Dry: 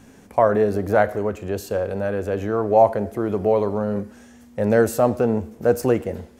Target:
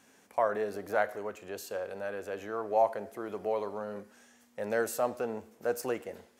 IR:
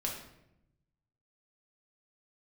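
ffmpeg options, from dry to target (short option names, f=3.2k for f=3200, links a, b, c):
-af "highpass=f=940:p=1,volume=-6.5dB"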